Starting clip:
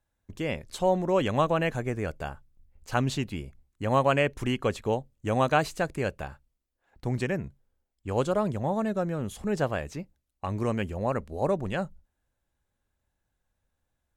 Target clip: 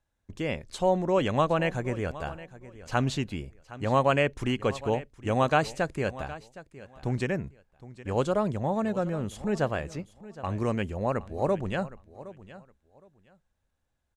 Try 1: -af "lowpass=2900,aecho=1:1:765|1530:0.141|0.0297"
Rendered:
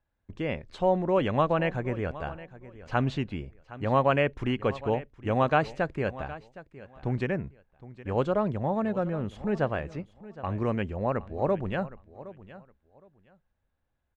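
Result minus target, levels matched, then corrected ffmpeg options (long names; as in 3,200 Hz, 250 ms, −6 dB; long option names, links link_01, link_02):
8,000 Hz band −15.0 dB
-af "lowpass=9200,aecho=1:1:765|1530:0.141|0.0297"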